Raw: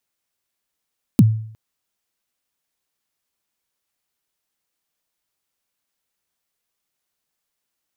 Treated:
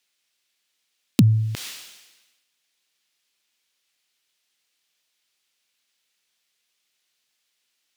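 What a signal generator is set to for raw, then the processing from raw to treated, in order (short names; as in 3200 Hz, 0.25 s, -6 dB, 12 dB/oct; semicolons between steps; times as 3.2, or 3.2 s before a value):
kick drum length 0.36 s, from 280 Hz, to 110 Hz, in 37 ms, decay 0.59 s, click on, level -4.5 dB
weighting filter D; sustainer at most 50 dB/s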